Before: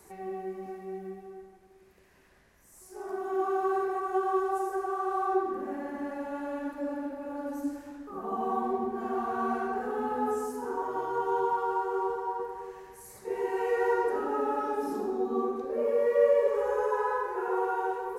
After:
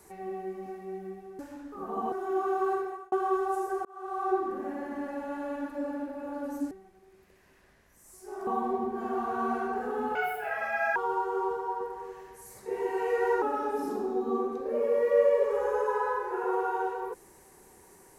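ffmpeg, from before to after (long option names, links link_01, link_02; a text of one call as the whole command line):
ffmpeg -i in.wav -filter_complex "[0:a]asplit=10[link_01][link_02][link_03][link_04][link_05][link_06][link_07][link_08][link_09][link_10];[link_01]atrim=end=1.392[link_11];[link_02]atrim=start=7.738:end=8.472[link_12];[link_03]atrim=start=3.148:end=4.15,asetpts=PTS-STARTPTS,afade=type=out:start_time=0.602:duration=0.4[link_13];[link_04]atrim=start=4.15:end=4.88,asetpts=PTS-STARTPTS,afade=type=in:duration=0.004:curve=hsin,afade=type=out:start_time=0.726:duration=0.004:curve=hsin[link_14];[link_05]atrim=start=4.88:end=7.742,asetpts=PTS-STARTPTS,afade=type=in:duration=0.49[link_15];[link_06]atrim=start=1.388:end=3.152[link_16];[link_07]atrim=start=8.468:end=10.154[link_17];[link_08]atrim=start=10.15:end=11.55,asetpts=PTS-STARTPTS,asetrate=76293,aresample=44100[link_18];[link_09]atrim=start=11.546:end=14.012[link_19];[link_10]atrim=start=14.458[link_20];[link_11][link_12]acrossfade=duration=0.004:curve1=hsin:curve2=hsin[link_21];[link_13][link_14][link_15]concat=n=3:v=0:a=1[link_22];[link_21][link_22]acrossfade=duration=0.004:curve1=hsin:curve2=hsin[link_23];[link_23][link_16]acrossfade=duration=0.004:curve1=hsin:curve2=hsin[link_24];[link_24][link_17]acrossfade=duration=0.004:curve1=hsin:curve2=hsin[link_25];[link_25][link_18]acrossfade=duration=0.004:curve1=hsin:curve2=hsin[link_26];[link_26][link_19]acrossfade=duration=0.004:curve1=hsin:curve2=hsin[link_27];[link_27][link_20]acrossfade=duration=0.004:curve1=hsin:curve2=hsin" out.wav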